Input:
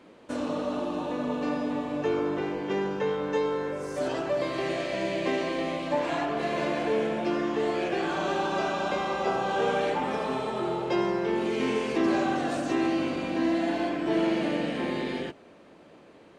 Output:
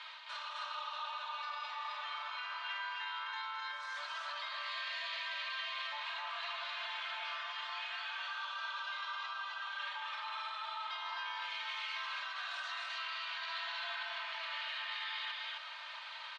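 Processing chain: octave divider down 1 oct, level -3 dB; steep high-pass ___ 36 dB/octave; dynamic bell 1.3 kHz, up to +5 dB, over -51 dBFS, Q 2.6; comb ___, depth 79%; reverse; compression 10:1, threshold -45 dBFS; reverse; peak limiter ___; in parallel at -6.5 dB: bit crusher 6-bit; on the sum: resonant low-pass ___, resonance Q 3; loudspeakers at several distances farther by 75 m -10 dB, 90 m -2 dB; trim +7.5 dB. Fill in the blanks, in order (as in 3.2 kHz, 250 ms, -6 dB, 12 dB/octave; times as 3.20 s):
940 Hz, 3.2 ms, -45.5 dBFS, 3.8 kHz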